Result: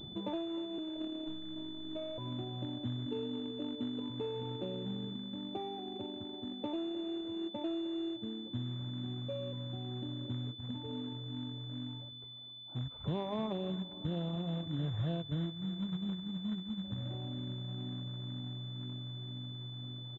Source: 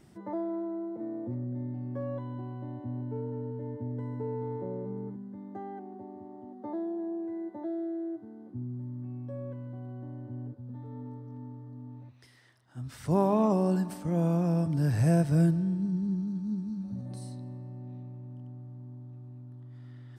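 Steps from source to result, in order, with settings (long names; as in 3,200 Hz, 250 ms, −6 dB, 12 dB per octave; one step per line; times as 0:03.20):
adaptive Wiener filter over 25 samples
reverb reduction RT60 1.6 s
0:03.06–0:04.10: low shelf with overshoot 190 Hz −8.5 dB, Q 3
downward compressor 4 to 1, threshold −46 dBFS, peak gain reduction 20.5 dB
0:00.78–0:02.18: phases set to zero 315 Hz
floating-point word with a short mantissa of 2 bits
repeating echo 307 ms, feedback 53%, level −18 dB
switching amplifier with a slow clock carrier 3,500 Hz
level +9 dB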